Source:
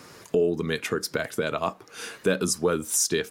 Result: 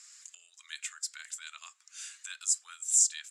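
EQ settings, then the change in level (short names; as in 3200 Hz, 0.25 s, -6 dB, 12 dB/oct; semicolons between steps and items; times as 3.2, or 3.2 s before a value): dynamic EQ 5800 Hz, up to -5 dB, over -43 dBFS, Q 2.2; Bessel high-pass 2300 Hz, order 6; synth low-pass 7500 Hz, resonance Q 8.2; -8.5 dB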